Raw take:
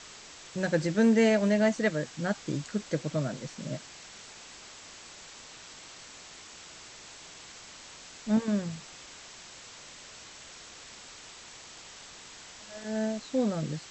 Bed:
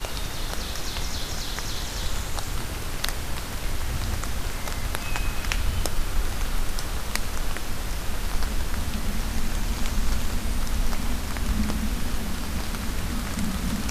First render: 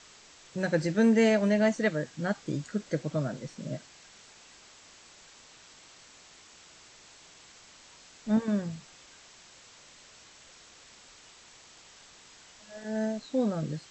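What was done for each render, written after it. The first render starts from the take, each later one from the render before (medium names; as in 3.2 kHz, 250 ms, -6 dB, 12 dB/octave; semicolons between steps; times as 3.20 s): noise print and reduce 6 dB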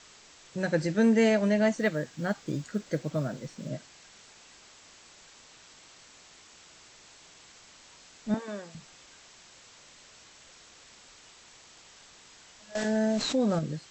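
1.78–3.69 s: companded quantiser 8-bit; 8.34–8.75 s: high-pass 460 Hz; 12.75–13.59 s: level flattener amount 70%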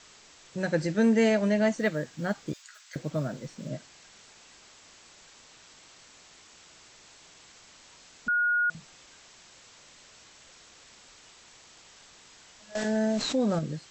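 2.53–2.96 s: Bessel high-pass 1.5 kHz, order 8; 8.28–8.70 s: bleep 1.44 kHz -22 dBFS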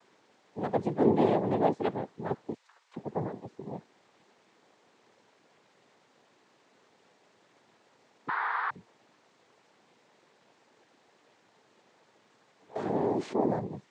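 noise-vocoded speech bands 6; band-pass filter 430 Hz, Q 0.64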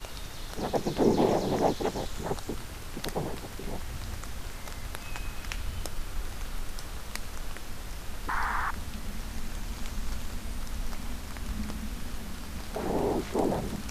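add bed -9.5 dB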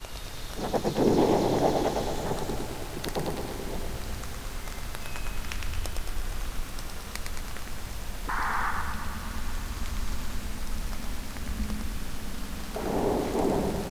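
on a send: feedback delay 109 ms, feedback 58%, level -4 dB; on the sum: bit-crushed delay 233 ms, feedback 80%, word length 8-bit, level -14 dB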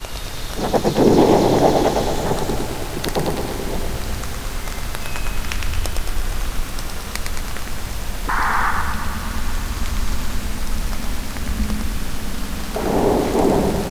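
trim +10 dB; peak limiter -2 dBFS, peak gain reduction 1.5 dB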